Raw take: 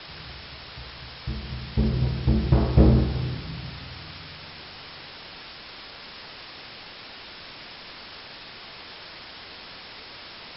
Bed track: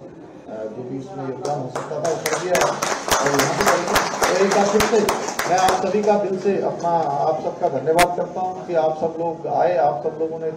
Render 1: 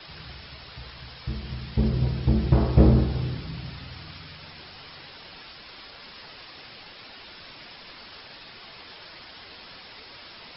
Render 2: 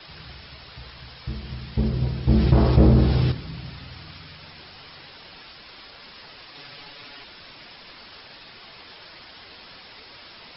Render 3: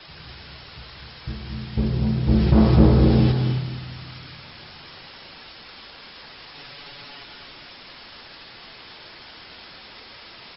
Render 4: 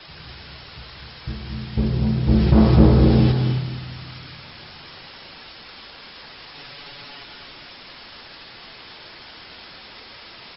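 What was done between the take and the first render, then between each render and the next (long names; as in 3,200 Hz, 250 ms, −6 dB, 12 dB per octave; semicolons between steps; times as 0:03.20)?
broadband denoise 6 dB, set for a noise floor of −43 dBFS
0:02.29–0:03.32: envelope flattener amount 50%; 0:06.54–0:07.24: comb filter 7 ms, depth 84%
single-tap delay 206 ms −10 dB; reverb whose tail is shaped and stops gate 320 ms rising, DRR 4.5 dB
level +1.5 dB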